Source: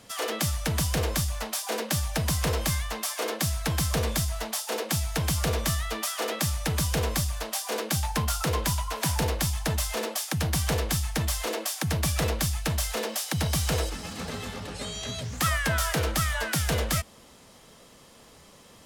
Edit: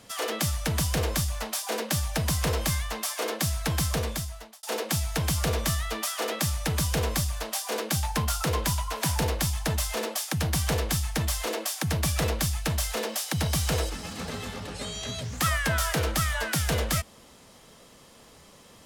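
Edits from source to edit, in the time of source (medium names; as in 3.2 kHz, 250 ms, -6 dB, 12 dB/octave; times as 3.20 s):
3.85–4.63 s: fade out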